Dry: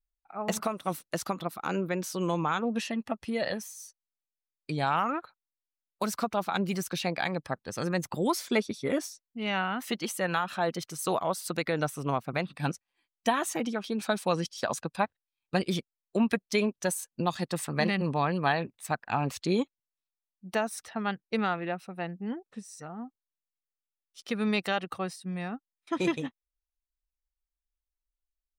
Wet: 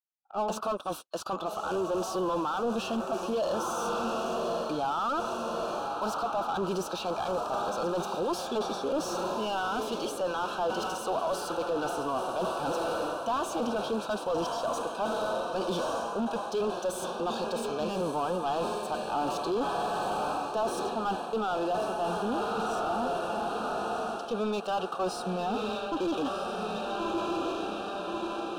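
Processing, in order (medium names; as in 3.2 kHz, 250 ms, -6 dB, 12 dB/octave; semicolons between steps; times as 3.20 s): high-pass 350 Hz 12 dB/octave; gate -47 dBFS, range -23 dB; echo that smears into a reverb 1275 ms, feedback 61%, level -12 dB; waveshaping leveller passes 1; reverse; compression 5:1, threshold -37 dBFS, peak gain reduction 16 dB; reverse; harmonic-percussive split harmonic +9 dB; in parallel at -8 dB: bit crusher 5-bit; on the sum: overload inside the chain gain 31.5 dB; overdrive pedal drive 13 dB, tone 1.6 kHz, clips at -31 dBFS; Butterworth band-stop 2 kHz, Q 1.5; trim +7.5 dB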